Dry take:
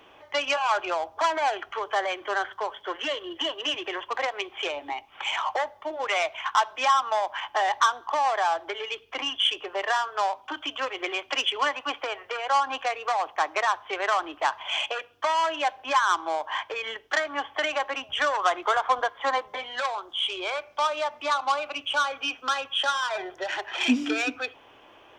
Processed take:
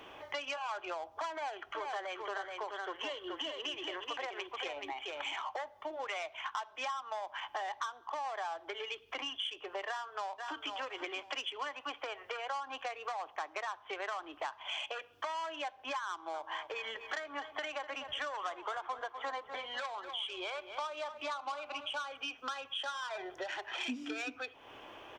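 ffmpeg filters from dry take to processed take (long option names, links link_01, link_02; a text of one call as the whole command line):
ffmpeg -i in.wav -filter_complex "[0:a]asettb=1/sr,asplit=3[link_01][link_02][link_03];[link_01]atrim=end=1.324[link_04];[link_02]atrim=start=1.32:end=5.5,asetpts=PTS-STARTPTS,afade=type=in:duration=0.004:curve=qsin,afade=type=out:start_time=4.176:duration=0.004:curve=qsin,aecho=1:1:428:0.501,atrim=end_sample=184338[link_05];[link_03]atrim=start=5.496[link_06];[link_04][link_05]acrossfade=duration=0.004:curve1=hsin:curve2=qsin[link_07];[link_07][link_06]acrossfade=duration=0.004:curve1=qsin:curve2=hsin,asplit=2[link_08][link_09];[link_09]afade=type=in:start_time=9.88:duration=0.01,afade=type=out:start_time=10.73:duration=0.01,aecho=0:1:500|1000|1500:0.316228|0.0632456|0.0126491[link_10];[link_08][link_10]amix=inputs=2:normalize=0,asettb=1/sr,asplit=3[link_11][link_12][link_13];[link_11]atrim=end=16.094[link_14];[link_12]atrim=start=16.09:end=22.17,asetpts=PTS-STARTPTS,afade=type=in:duration=0.004:curve=qsin,afade=type=out:start_time=6.076:duration=0.004:curve=qsin,asplit=2[link_15][link_16];[link_16]adelay=248,lowpass=frequency=3500:poles=1,volume=-13dB,asplit=2[link_17][link_18];[link_18]adelay=248,lowpass=frequency=3500:poles=1,volume=0.35,asplit=2[link_19][link_20];[link_20]adelay=248,lowpass=frequency=3500:poles=1,volume=0.35[link_21];[link_15][link_17][link_19][link_21]amix=inputs=4:normalize=0,atrim=end_sample=268128[link_22];[link_13]atrim=start=22.166[link_23];[link_14][link_22]acrossfade=duration=0.004:curve1=hsin:curve2=qsin[link_24];[link_24][link_23]acrossfade=duration=0.004:curve1=qsin:curve2=hsin,acompressor=threshold=-41dB:ratio=4,volume=1.5dB" out.wav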